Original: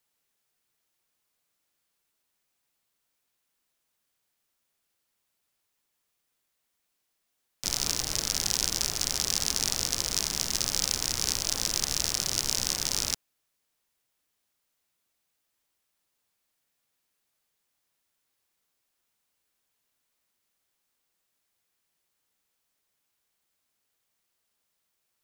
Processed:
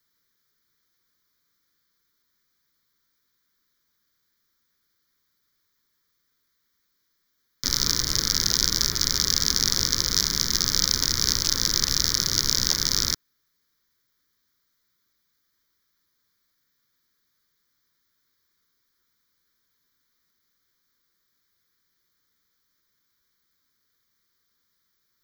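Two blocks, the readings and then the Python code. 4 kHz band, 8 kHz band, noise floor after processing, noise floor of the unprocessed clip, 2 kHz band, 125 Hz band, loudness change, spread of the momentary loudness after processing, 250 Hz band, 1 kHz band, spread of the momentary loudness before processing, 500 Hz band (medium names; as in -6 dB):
+7.0 dB, +4.0 dB, -74 dBFS, -79 dBFS, +5.0 dB, +7.5 dB, +5.5 dB, 2 LU, +6.5 dB, +3.0 dB, 2 LU, +2.0 dB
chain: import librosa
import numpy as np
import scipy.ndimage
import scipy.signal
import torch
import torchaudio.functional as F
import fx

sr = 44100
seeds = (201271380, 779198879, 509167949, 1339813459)

y = fx.fixed_phaser(x, sr, hz=2700.0, stages=6)
y = fx.buffer_crackle(y, sr, first_s=0.52, period_s=0.42, block=512, kind='repeat')
y = y * 10.0 ** (8.0 / 20.0)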